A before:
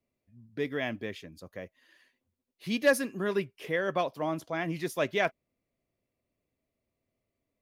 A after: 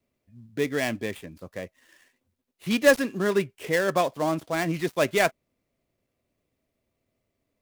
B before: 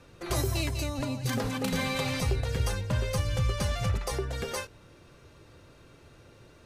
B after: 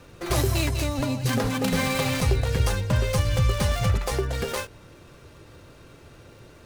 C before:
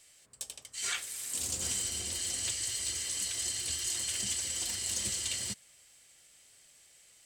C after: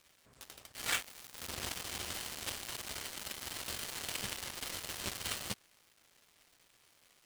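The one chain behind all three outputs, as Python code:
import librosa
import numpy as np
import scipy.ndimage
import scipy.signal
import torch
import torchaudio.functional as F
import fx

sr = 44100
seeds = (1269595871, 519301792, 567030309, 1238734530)

y = fx.dead_time(x, sr, dead_ms=0.088)
y = y * librosa.db_to_amplitude(6.0)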